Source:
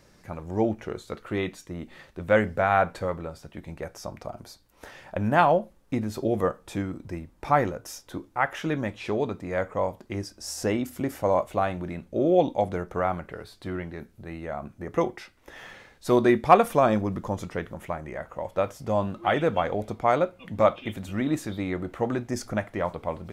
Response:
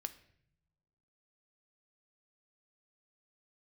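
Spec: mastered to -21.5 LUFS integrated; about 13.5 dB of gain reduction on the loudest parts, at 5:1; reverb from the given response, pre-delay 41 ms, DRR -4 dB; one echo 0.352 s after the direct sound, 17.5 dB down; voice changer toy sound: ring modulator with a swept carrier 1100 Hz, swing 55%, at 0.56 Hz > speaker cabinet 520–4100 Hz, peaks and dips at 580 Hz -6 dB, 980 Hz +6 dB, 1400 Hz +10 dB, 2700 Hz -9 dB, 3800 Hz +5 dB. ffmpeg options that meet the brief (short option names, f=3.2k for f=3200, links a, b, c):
-filter_complex "[0:a]acompressor=threshold=-25dB:ratio=5,aecho=1:1:352:0.133,asplit=2[a][b];[1:a]atrim=start_sample=2205,adelay=41[c];[b][c]afir=irnorm=-1:irlink=0,volume=6.5dB[d];[a][d]amix=inputs=2:normalize=0,aeval=exprs='val(0)*sin(2*PI*1100*n/s+1100*0.55/0.56*sin(2*PI*0.56*n/s))':c=same,highpass=520,equalizer=f=580:t=q:w=4:g=-6,equalizer=f=980:t=q:w=4:g=6,equalizer=f=1.4k:t=q:w=4:g=10,equalizer=f=2.7k:t=q:w=4:g=-9,equalizer=f=3.8k:t=q:w=4:g=5,lowpass=f=4.1k:w=0.5412,lowpass=f=4.1k:w=1.3066,volume=3dB"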